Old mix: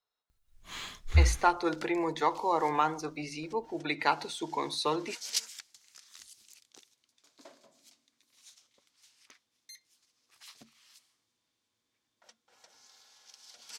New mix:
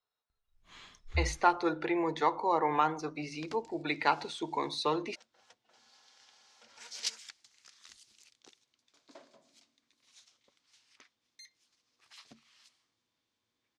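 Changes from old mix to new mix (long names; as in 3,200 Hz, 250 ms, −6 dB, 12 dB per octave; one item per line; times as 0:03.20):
first sound −10.5 dB
second sound: entry +1.70 s
master: add high-frequency loss of the air 71 metres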